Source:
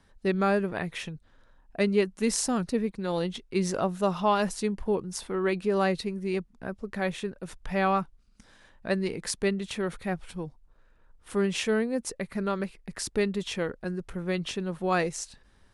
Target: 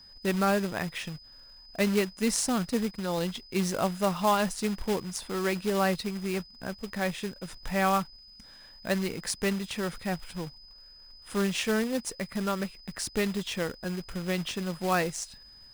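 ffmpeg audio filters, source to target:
ffmpeg -i in.wav -af "acrusher=bits=3:mode=log:mix=0:aa=0.000001,equalizer=frequency=400:width_type=o:width=0.6:gain=-4,aeval=exprs='val(0)+0.00316*sin(2*PI*5000*n/s)':channel_layout=same" out.wav

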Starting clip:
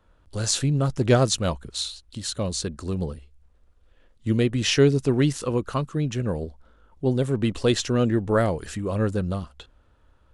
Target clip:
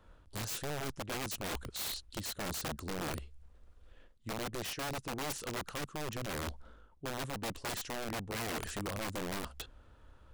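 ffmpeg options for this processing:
ffmpeg -i in.wav -af "areverse,acompressor=threshold=-35dB:ratio=12,areverse,aeval=exprs='(mod(47.3*val(0)+1,2)-1)/47.3':channel_layout=same,volume=1dB" out.wav

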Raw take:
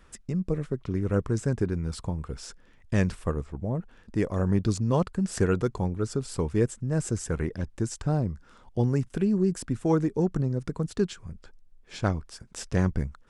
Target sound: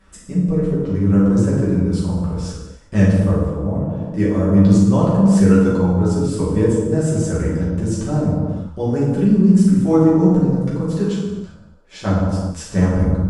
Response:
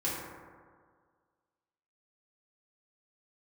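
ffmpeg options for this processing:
-filter_complex "[0:a]asettb=1/sr,asplit=3[link_01][link_02][link_03];[link_01]atrim=end=10.864[link_04];[link_02]atrim=start=10.86:end=12.07,asetpts=PTS-STARTPTS,afade=type=in:duration=0.004:curve=qsin,afade=type=out:start_time=1.206:duration=0.004:curve=qsin,lowshelf=frequency=230:gain=-7.5[link_05];[link_03]atrim=start=12.066[link_06];[link_04][link_05]acrossfade=duration=0.004:curve1=hsin:curve2=qsin[link_07];[link_07][link_06]acrossfade=duration=0.004:curve1=qsin:curve2=hsin[link_08];[1:a]atrim=start_sample=2205,afade=type=out:start_time=0.3:duration=0.01,atrim=end_sample=13671,asetrate=25578,aresample=44100[link_09];[link_08][link_09]afir=irnorm=-1:irlink=0,volume=-2dB"

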